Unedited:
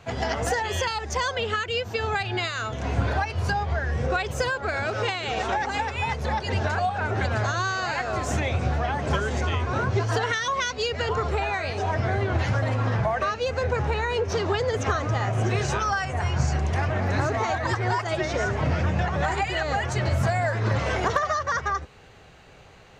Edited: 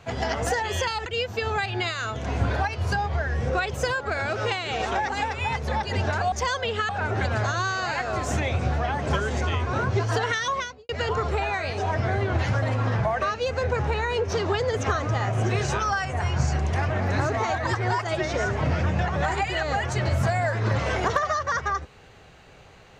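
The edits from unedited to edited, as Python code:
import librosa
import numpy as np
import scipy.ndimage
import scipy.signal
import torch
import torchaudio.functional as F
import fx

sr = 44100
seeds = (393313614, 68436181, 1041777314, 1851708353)

y = fx.studio_fade_out(x, sr, start_s=10.5, length_s=0.39)
y = fx.edit(y, sr, fx.move(start_s=1.06, length_s=0.57, to_s=6.89), tone=tone)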